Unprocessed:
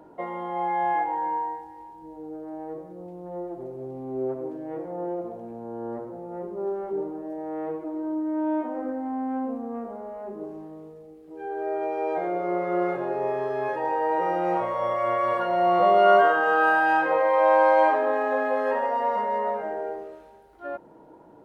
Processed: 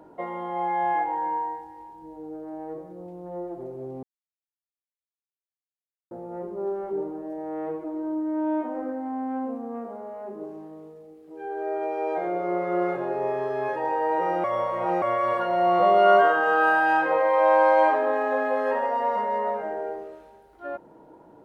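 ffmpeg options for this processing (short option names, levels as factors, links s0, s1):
-filter_complex "[0:a]asettb=1/sr,asplit=3[s0][s1][s2];[s0]atrim=end=8.844[s3];[s1]atrim=start=8.84:end=12.26,asetpts=PTS-STARTPTS,afade=t=in:d=0.004:c=qsin,afade=t=out:st=3.416:d=0.004:c=qsin,highpass=f=150:p=1[s4];[s2]atrim=start=12.256[s5];[s3][s4]acrossfade=d=0.004:c1=hsin:c2=qsin[s6];[s6][s5]acrossfade=d=0.004:c1=qsin:c2=hsin,asplit=5[s7][s8][s9][s10][s11];[s7]atrim=end=4.03,asetpts=PTS-STARTPTS,afade=t=out:st=4.026:d=0.004:c=hsin[s12];[s8]atrim=start=4.03:end=6.11,asetpts=PTS-STARTPTS,volume=0[s13];[s9]atrim=start=6.11:end=14.442,asetpts=PTS-STARTPTS,afade=t=in:d=0.004:c=hsin[s14];[s10]atrim=start=14.438:end=15.022,asetpts=PTS-STARTPTS,areverse[s15];[s11]atrim=start=15.018[s16];[s12][s13][s14]concat=n=3:v=0:a=1[s17];[s17][s15]acrossfade=d=0.004:c1=hsin:c2=hsin[s18];[s18][s16]acrossfade=d=0.004:c1=hsin:c2=hsin"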